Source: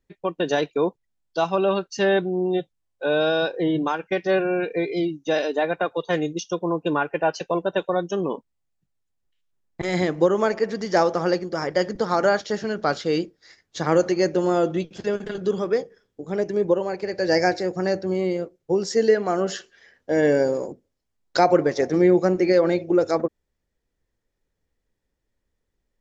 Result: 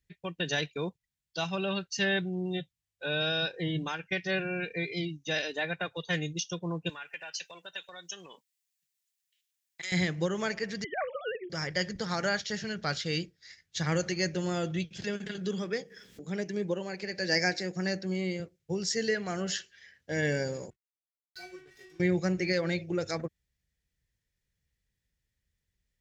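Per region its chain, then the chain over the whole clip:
6.89–9.92 HPF 660 Hz 6 dB/oct + tilt +3 dB/oct + compressor 2.5:1, threshold -35 dBFS
10.84–11.5 sine-wave speech + negative-ratio compressor -19 dBFS, ratio -0.5
15.02–18.4 resonant low shelf 150 Hz -10.5 dB, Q 1.5 + upward compressor, threshold -27 dBFS
20.7–22 high shelf 6400 Hz +4 dB + metallic resonator 370 Hz, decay 0.49 s, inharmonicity 0.002 + backlash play -46 dBFS
whole clip: HPF 42 Hz; band shelf 550 Hz -13.5 dB 2.8 oct

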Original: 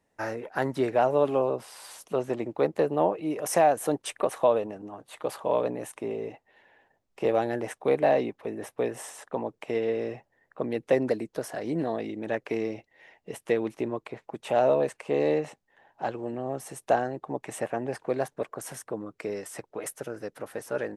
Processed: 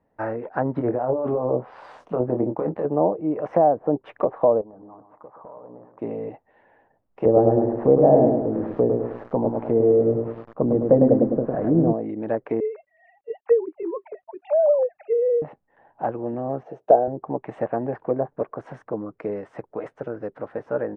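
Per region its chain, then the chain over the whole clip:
0.74–2.85 negative-ratio compressor -28 dBFS + doubler 24 ms -6 dB
4.61–5.99 ladder low-pass 1300 Hz, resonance 45% + compressor 5:1, threshold -45 dBFS + feedback echo 0.123 s, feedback 30%, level -10 dB
7.26–11.93 tilt -2.5 dB/oct + lo-fi delay 0.104 s, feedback 55%, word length 7-bit, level -3 dB
12.6–15.42 sine-wave speech + companded quantiser 8-bit
16.63–17.08 speaker cabinet 180–7100 Hz, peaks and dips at 240 Hz -6 dB, 460 Hz +6 dB, 660 Hz +7 dB, 1100 Hz -9 dB, 2000 Hz -6 dB, 6000 Hz +6 dB + mismatched tape noise reduction decoder only
whole clip: treble ducked by the level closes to 770 Hz, closed at -22.5 dBFS; LPF 1200 Hz 12 dB/oct; notch 390 Hz, Q 12; gain +6 dB

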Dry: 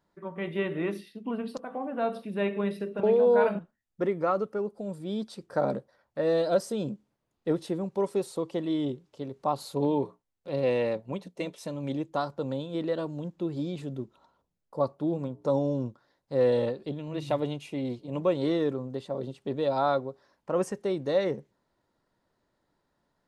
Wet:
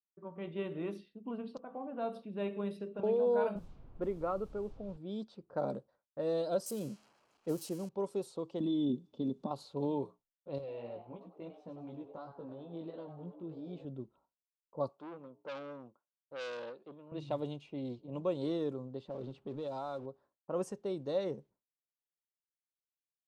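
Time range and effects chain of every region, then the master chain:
3.55–4.96 running mean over 7 samples + added noise brown -43 dBFS
6.66–7.89 switching spikes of -29 dBFS + notch 3600 Hz, Q 6.2
8.6–9.51 compressor, threshold -31 dBFS + small resonant body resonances 230/3500 Hz, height 18 dB, ringing for 35 ms
10.58–13.85 compressor 12:1, threshold -29 dBFS + frequency-shifting echo 98 ms, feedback 44%, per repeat +130 Hz, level -10 dB + chorus 2.9 Hz, delay 16 ms, depth 2.5 ms
14.89–17.12 weighting filter A + core saturation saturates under 2400 Hz
19.08–20.06 G.711 law mismatch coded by mu + compressor 3:1, threshold -29 dBFS
whole clip: low-pass opened by the level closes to 890 Hz, open at -25 dBFS; expander -51 dBFS; bell 1900 Hz -9 dB 0.66 oct; gain -8 dB

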